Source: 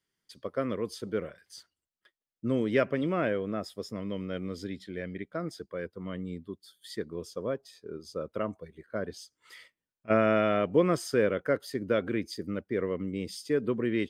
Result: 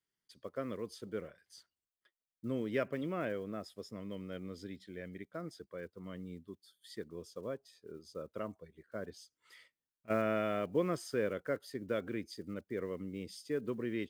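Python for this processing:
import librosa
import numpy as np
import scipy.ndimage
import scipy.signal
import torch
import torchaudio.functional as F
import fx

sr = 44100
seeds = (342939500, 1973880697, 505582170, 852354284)

y = fx.block_float(x, sr, bits=7)
y = y * 10.0 ** (-8.5 / 20.0)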